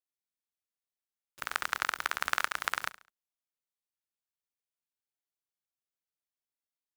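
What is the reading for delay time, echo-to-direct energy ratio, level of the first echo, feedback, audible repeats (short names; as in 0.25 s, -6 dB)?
69 ms, -16.5 dB, -17.0 dB, 36%, 3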